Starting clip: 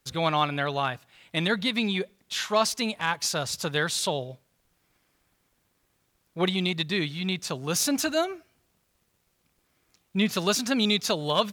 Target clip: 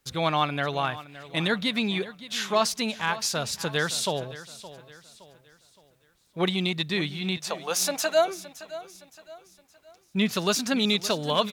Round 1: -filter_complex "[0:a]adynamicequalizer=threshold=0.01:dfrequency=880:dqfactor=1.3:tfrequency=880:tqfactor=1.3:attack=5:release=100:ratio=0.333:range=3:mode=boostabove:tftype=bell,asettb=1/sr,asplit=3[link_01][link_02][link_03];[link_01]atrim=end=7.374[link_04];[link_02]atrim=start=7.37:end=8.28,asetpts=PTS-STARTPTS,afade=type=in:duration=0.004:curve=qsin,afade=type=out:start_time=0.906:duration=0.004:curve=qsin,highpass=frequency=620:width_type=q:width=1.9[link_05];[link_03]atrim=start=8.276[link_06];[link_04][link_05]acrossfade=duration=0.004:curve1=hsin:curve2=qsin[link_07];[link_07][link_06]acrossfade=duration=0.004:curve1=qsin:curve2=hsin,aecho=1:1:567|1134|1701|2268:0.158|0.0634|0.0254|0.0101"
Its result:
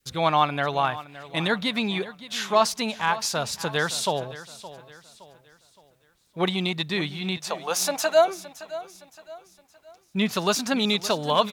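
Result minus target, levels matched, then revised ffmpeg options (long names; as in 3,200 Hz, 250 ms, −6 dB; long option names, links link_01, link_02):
1,000 Hz band +3.0 dB
-filter_complex "[0:a]asettb=1/sr,asplit=3[link_01][link_02][link_03];[link_01]atrim=end=7.374[link_04];[link_02]atrim=start=7.37:end=8.28,asetpts=PTS-STARTPTS,afade=type=in:duration=0.004:curve=qsin,afade=type=out:start_time=0.906:duration=0.004:curve=qsin,highpass=frequency=620:width_type=q:width=1.9[link_05];[link_03]atrim=start=8.276[link_06];[link_04][link_05]acrossfade=duration=0.004:curve1=hsin:curve2=qsin[link_07];[link_07][link_06]acrossfade=duration=0.004:curve1=qsin:curve2=hsin,aecho=1:1:567|1134|1701|2268:0.158|0.0634|0.0254|0.0101"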